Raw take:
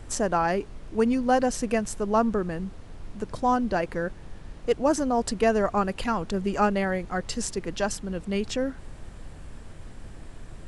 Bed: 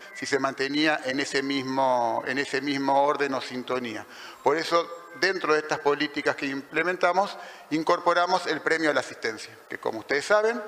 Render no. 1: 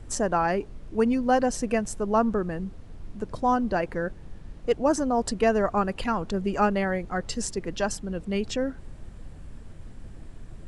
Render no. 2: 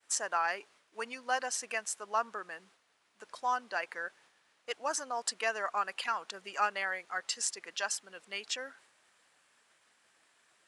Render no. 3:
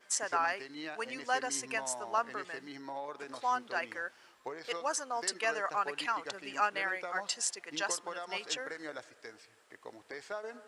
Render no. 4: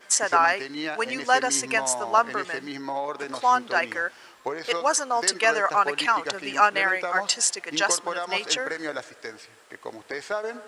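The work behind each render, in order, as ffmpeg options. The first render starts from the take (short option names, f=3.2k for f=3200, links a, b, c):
-af "afftdn=nr=6:nf=-44"
-af "highpass=1.3k,agate=range=-33dB:threshold=-59dB:ratio=3:detection=peak"
-filter_complex "[1:a]volume=-19.5dB[a];[0:a][a]amix=inputs=2:normalize=0"
-af "volume=11.5dB,alimiter=limit=-3dB:level=0:latency=1"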